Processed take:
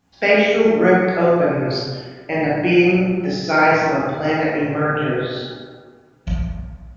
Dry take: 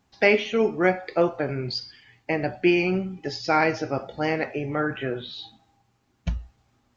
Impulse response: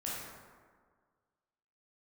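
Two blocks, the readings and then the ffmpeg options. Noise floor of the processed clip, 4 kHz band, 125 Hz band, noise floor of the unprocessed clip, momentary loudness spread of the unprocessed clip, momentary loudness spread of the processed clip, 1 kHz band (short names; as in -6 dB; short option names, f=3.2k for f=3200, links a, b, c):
-51 dBFS, +5.0 dB, +9.0 dB, -69 dBFS, 15 LU, 14 LU, +8.0 dB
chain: -filter_complex "[1:a]atrim=start_sample=2205[a];[0:a][a]afir=irnorm=-1:irlink=0,volume=5dB"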